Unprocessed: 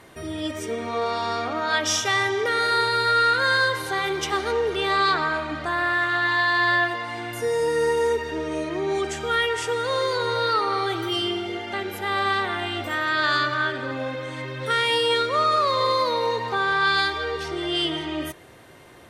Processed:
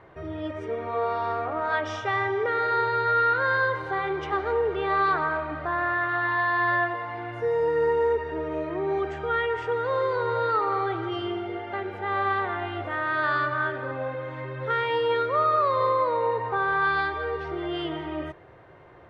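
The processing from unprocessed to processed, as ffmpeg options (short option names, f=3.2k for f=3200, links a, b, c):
-filter_complex "[0:a]asettb=1/sr,asplit=3[a][b][c];[a]atrim=end=1.324[d];[b]atrim=start=1.32:end=1.72,asetpts=PTS-STARTPTS,afade=t=in:d=0.004:c=qsin,afade=t=out:st=0.396:d=0.004:c=qsin,adynamicsmooth=sensitivity=3:basefreq=1.2k[e];[c]atrim=start=1.716[f];[d][e]acrossfade=d=0.004:c1=hsin:c2=qsin[g];[g][f]acrossfade=d=0.004:c1=qsin:c2=hsin,asettb=1/sr,asplit=3[h][i][j];[h]atrim=end=15.894[k];[i]atrim=start=15.89:end=16.56,asetpts=PTS-STARTPTS,afade=t=in:d=0.004:c=qsin,afade=t=out:st=0.666:d=0.004:c=qsin,lowpass=3.5k[l];[j]atrim=start=16.556[m];[k][l]acrossfade=d=0.004:c1=hsin:c2=qsin[n];[n][m]acrossfade=d=0.004:c1=qsin:c2=hsin,lowpass=1.5k,equalizer=f=240:t=o:w=0.56:g=-11"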